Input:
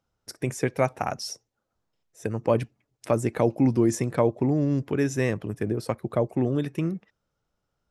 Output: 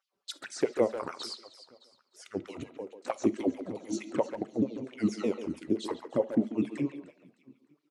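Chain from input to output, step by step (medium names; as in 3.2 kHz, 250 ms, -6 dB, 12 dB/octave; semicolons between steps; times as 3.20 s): sawtooth pitch modulation -6 st, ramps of 154 ms; in parallel at +2 dB: compression 4:1, threshold -32 dBFS, peak gain reduction 13 dB; on the sum: bass shelf 79 Hz +11 dB; de-hum 328.1 Hz, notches 12; touch-sensitive flanger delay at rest 5.3 ms, full sweep at -17.5 dBFS; feedback delay 305 ms, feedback 38%, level -16.5 dB; LFO high-pass sine 4.5 Hz 250–3800 Hz; speakerphone echo 140 ms, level -9 dB; on a send at -17 dB: reverberation, pre-delay 3 ms; on the sum: trim -6.5 dB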